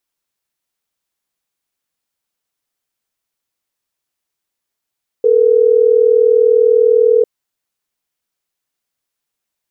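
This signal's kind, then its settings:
call progress tone ringback tone, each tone −10 dBFS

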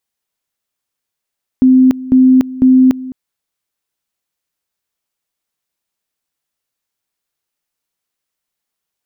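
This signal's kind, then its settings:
tone at two levels in turn 258 Hz −4 dBFS, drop 18 dB, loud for 0.29 s, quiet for 0.21 s, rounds 3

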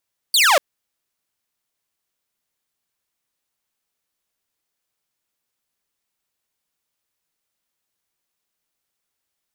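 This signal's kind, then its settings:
single falling chirp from 4,800 Hz, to 520 Hz, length 0.24 s saw, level −9 dB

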